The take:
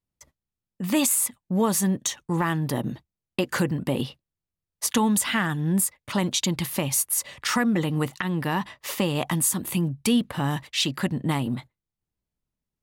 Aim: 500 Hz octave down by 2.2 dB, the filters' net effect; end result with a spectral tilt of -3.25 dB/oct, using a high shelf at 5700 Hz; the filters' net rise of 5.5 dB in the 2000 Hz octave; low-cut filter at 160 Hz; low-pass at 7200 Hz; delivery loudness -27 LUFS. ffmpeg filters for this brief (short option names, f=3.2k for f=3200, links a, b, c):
-af "highpass=160,lowpass=7.2k,equalizer=f=500:t=o:g=-3,equalizer=f=2k:t=o:g=6.5,highshelf=f=5.7k:g=3.5,volume=-1.5dB"